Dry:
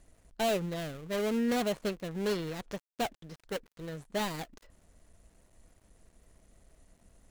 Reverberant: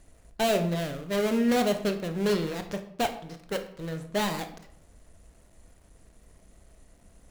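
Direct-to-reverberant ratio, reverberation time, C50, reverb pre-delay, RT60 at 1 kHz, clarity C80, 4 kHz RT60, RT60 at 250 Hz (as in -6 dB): 7.0 dB, 0.65 s, 11.0 dB, 21 ms, 0.65 s, 14.0 dB, 0.45 s, 0.80 s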